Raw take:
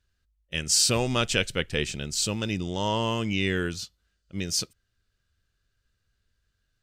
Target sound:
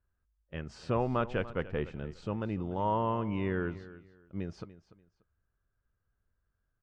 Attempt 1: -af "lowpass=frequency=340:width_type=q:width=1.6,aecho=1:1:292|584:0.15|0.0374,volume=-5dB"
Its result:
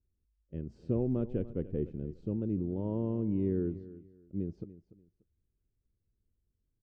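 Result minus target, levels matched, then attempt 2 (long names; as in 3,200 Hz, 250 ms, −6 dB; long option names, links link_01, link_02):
1,000 Hz band −19.5 dB
-af "lowpass=frequency=1100:width_type=q:width=1.6,aecho=1:1:292|584:0.15|0.0374,volume=-5dB"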